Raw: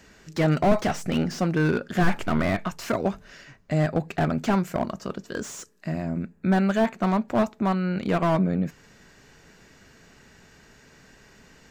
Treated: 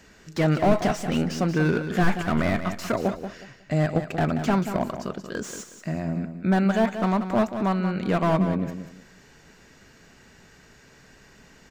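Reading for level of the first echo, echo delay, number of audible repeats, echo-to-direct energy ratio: -9.5 dB, 0.183 s, 3, -9.0 dB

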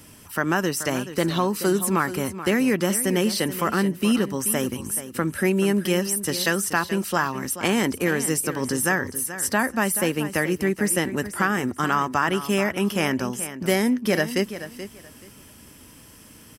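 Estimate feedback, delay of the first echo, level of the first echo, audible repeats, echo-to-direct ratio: 21%, 0.43 s, -12.5 dB, 2, -12.5 dB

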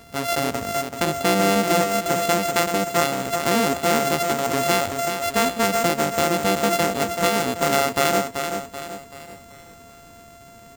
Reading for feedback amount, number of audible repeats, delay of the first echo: 44%, 4, 0.383 s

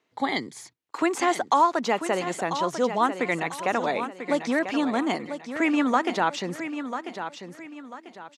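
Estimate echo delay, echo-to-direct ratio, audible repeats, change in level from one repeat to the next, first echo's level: 0.993 s, -9.0 dB, 3, -9.0 dB, -9.5 dB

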